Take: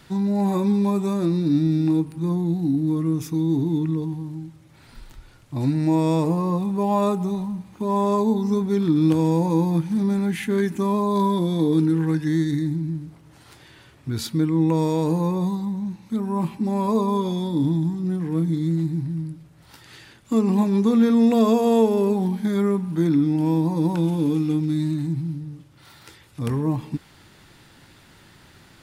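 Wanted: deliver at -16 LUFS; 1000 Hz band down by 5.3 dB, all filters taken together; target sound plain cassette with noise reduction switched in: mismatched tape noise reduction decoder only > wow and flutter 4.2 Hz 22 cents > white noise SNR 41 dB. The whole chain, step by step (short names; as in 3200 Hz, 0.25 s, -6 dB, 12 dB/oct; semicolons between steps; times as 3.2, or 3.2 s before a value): bell 1000 Hz -6 dB; mismatched tape noise reduction decoder only; wow and flutter 4.2 Hz 22 cents; white noise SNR 41 dB; gain +6.5 dB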